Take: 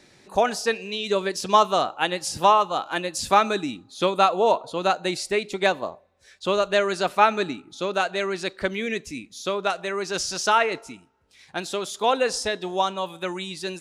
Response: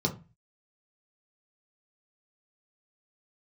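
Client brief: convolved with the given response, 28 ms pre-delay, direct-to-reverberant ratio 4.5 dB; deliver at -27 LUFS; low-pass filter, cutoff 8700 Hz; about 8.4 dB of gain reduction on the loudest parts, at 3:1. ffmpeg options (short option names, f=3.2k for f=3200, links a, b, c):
-filter_complex "[0:a]lowpass=8.7k,acompressor=threshold=-23dB:ratio=3,asplit=2[a][b];[1:a]atrim=start_sample=2205,adelay=28[c];[b][c]afir=irnorm=-1:irlink=0,volume=-12dB[d];[a][d]amix=inputs=2:normalize=0,volume=-1.5dB"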